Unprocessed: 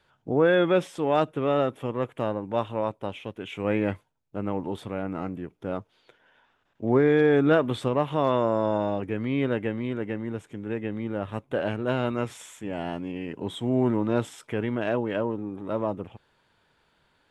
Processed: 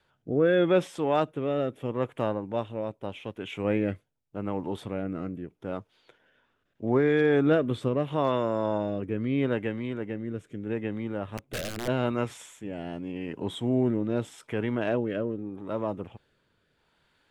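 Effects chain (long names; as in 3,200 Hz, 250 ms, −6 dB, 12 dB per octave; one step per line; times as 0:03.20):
0:11.37–0:11.88: wrap-around overflow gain 22.5 dB
rotating-speaker cabinet horn 0.8 Hz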